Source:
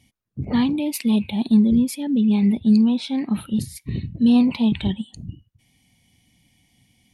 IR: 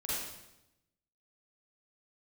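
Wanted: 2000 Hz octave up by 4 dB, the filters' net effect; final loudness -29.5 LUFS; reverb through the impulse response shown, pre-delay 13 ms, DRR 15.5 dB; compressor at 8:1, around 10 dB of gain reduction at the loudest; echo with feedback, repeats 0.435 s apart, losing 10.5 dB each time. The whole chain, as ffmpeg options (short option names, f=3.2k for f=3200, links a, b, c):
-filter_complex "[0:a]equalizer=f=2k:t=o:g=5,acompressor=threshold=-22dB:ratio=8,aecho=1:1:435|870|1305:0.299|0.0896|0.0269,asplit=2[a][b];[1:a]atrim=start_sample=2205,adelay=13[c];[b][c]afir=irnorm=-1:irlink=0,volume=-19.5dB[d];[a][d]amix=inputs=2:normalize=0,volume=-3dB"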